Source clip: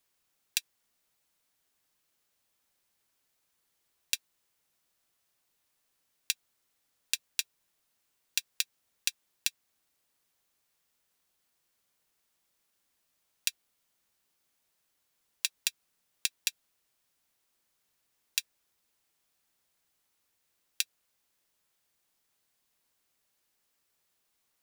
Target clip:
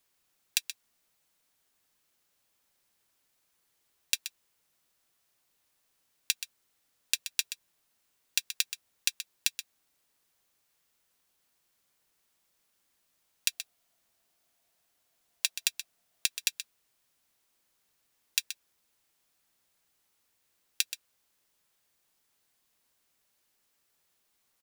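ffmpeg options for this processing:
-filter_complex "[0:a]asettb=1/sr,asplit=3[s0][s1][s2];[s0]atrim=end=13.484[s3];[s1]atrim=start=13.48:end=16.26,asetpts=PTS-STARTPTS,afade=t=in:d=0.004:c=qsin,afade=t=out:st=2.776:d=0.004:c=qsin,equalizer=f=680:w=7.4:g=11[s4];[s2]atrim=start=16.256[s5];[s3][s4]acrossfade=d=0.004:c1=hsin:c2=qsin[s6];[s6][s5]acrossfade=d=0.004:c1=qsin:c2=hsin,aecho=1:1:127:0.282,volume=1.26"

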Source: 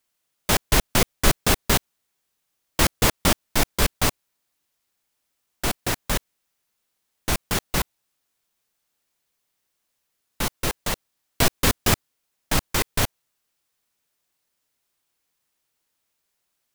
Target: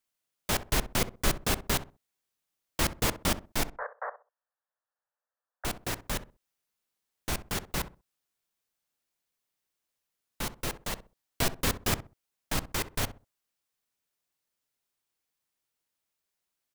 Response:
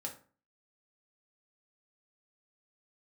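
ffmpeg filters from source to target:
-filter_complex "[0:a]asettb=1/sr,asplit=3[s0][s1][s2];[s0]atrim=end=3.674[s3];[s1]atrim=start=3.67:end=5.65,asetpts=PTS-STARTPTS,afade=t=in:d=0.004:c=qsin,afade=t=out:st=1.976:d=0.004:c=qsin,asuperpass=centerf=930:order=20:qfactor=0.68[s4];[s2]atrim=start=5.646[s5];[s3][s4]acrossfade=d=0.004:c1=hsin:c2=qsin[s6];[s6][s5]acrossfade=d=0.004:c1=qsin:c2=hsin,asplit=2[s7][s8];[s8]adelay=64,lowpass=f=1100:p=1,volume=0.251,asplit=2[s9][s10];[s10]adelay=64,lowpass=f=1100:p=1,volume=0.26,asplit=2[s11][s12];[s12]adelay=64,lowpass=f=1100:p=1,volume=0.26[s13];[s9][s11][s13]amix=inputs=3:normalize=0[s14];[s7][s14]amix=inputs=2:normalize=0,volume=0.376"

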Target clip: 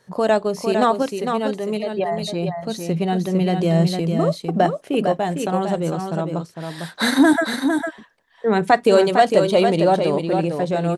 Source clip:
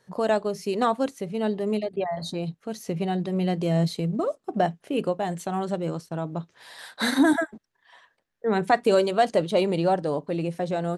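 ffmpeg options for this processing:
-filter_complex "[0:a]asettb=1/sr,asplit=3[s0][s1][s2];[s0]atrim=end=1.024[s3];[s1]atrim=start=1.02:end=1.99,asetpts=PTS-STARTPTS,afade=t=in:d=0.004:c=qsin,afade=t=out:st=0.966:d=0.004:c=qsin,lowshelf=f=470:g=-6[s4];[s2]atrim=start=1.986[s5];[s3][s4]acrossfade=d=0.004:c1=hsin:c2=qsin[s6];[s6][s5]acrossfade=d=0.004:c1=qsin:c2=hsin,aecho=1:1:454:0.501,volume=1.88"

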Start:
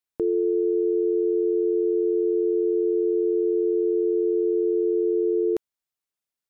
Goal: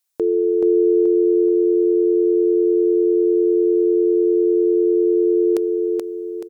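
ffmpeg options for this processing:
-filter_complex "[0:a]bass=f=250:g=-11,treble=f=4000:g=9,asplit=2[s0][s1];[s1]aecho=0:1:429|858|1287|1716|2145:0.708|0.297|0.125|0.0525|0.022[s2];[s0][s2]amix=inputs=2:normalize=0,volume=2.11"

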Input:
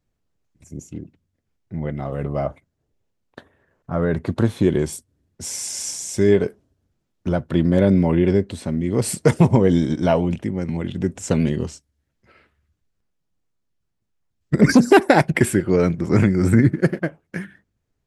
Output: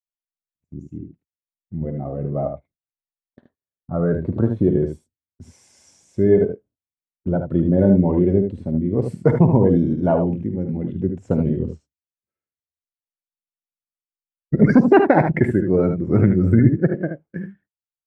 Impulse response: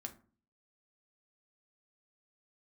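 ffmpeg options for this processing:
-filter_complex "[0:a]lowpass=f=1300:p=1,agate=range=0.0501:threshold=0.00501:ratio=16:detection=peak,afftdn=nr=14:nf=-28,asplit=2[s0][s1];[s1]aecho=0:1:51|76:0.211|0.447[s2];[s0][s2]amix=inputs=2:normalize=0"

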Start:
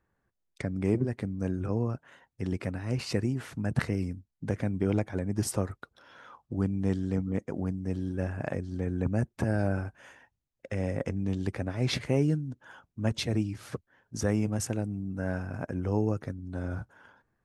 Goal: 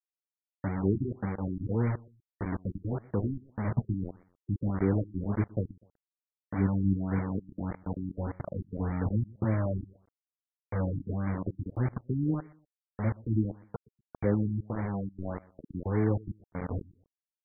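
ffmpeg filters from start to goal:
-filter_complex "[0:a]asettb=1/sr,asplit=3[s0][s1][s2];[s0]atrim=end=14.254[s3];[s1]atrim=start=14.25:end=15.3,asetpts=PTS-STARTPTS,afade=t=in:d=0.004:c=qsin,afade=t=out:st=1.046:d=0.004:c=qsin,highpass=76[s4];[s2]atrim=start=15.296[s5];[s3][s4]acrossfade=d=0.004:c1=hsin:c2=qsin[s6];[s6][s5]acrossfade=d=0.004:c1=qsin:c2=hsin,afftfilt=real='re*gte(hypot(re,im),0.112)':imag='im*gte(hypot(re,im),0.112)':win_size=1024:overlap=0.75,flanger=delay=8.6:depth=1.8:regen=54:speed=0.51:shape=sinusoidal,acrusher=bits=5:mix=0:aa=0.000001,aecho=1:1:123|246:0.0794|0.023,afftfilt=real='re*lt(b*sr/1024,340*pow(2400/340,0.5+0.5*sin(2*PI*1.7*pts/sr)))':imag='im*lt(b*sr/1024,340*pow(2400/340,0.5+0.5*sin(2*PI*1.7*pts/sr)))':win_size=1024:overlap=0.75,volume=1.33"

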